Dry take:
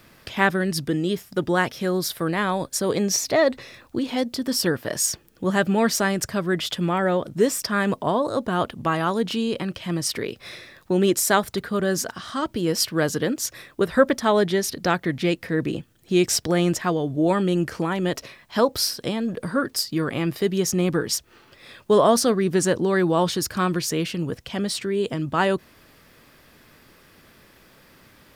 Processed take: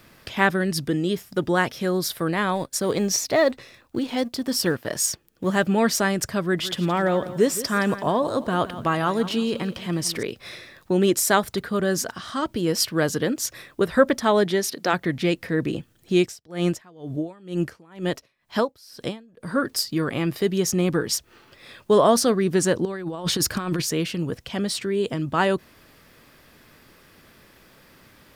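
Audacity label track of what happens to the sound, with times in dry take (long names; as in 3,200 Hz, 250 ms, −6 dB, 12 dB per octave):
2.550000	5.670000	mu-law and A-law mismatch coded by A
6.410000	10.230000	feedback echo at a low word length 169 ms, feedback 35%, word length 8 bits, level −14 dB
14.440000	14.920000	high-pass filter 130 Hz → 320 Hz
16.190000	19.510000	tremolo with a sine in dB 2.1 Hz, depth 28 dB
22.850000	23.820000	compressor whose output falls as the input rises −25 dBFS, ratio −0.5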